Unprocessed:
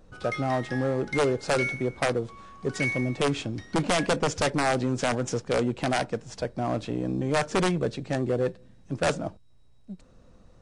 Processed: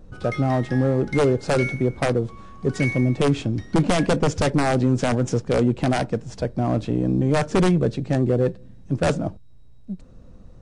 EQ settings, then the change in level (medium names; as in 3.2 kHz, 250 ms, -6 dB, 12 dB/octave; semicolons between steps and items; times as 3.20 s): bass shelf 420 Hz +10.5 dB; 0.0 dB